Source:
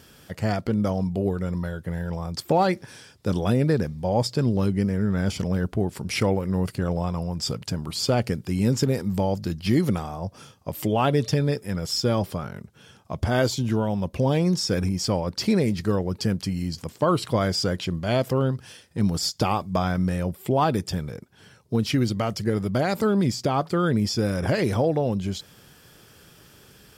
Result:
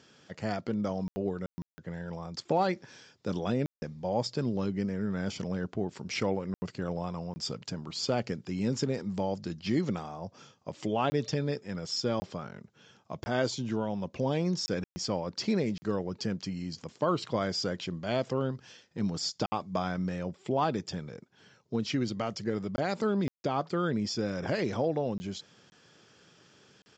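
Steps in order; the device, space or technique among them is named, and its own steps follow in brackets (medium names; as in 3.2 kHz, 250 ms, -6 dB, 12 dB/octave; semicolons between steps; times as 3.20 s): call with lost packets (high-pass 150 Hz 12 dB/octave; resampled via 16 kHz; lost packets of 20 ms bursts); trim -6.5 dB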